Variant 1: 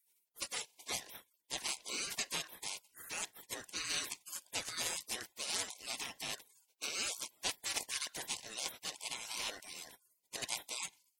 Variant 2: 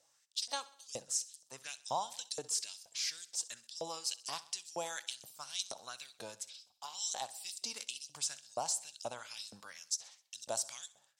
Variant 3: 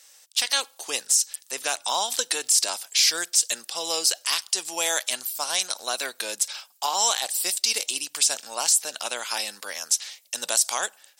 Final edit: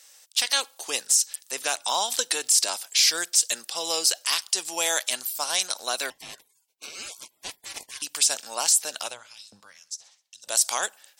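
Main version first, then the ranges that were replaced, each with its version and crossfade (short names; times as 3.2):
3
6.1–8.02 from 1
9.1–10.51 from 2, crossfade 0.16 s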